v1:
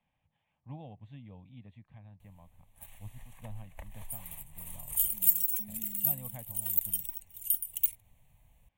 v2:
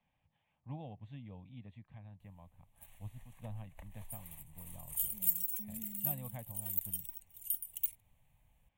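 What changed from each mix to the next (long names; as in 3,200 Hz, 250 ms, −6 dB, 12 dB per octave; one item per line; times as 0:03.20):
background −7.0 dB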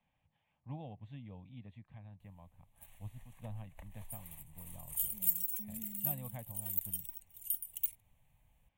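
nothing changed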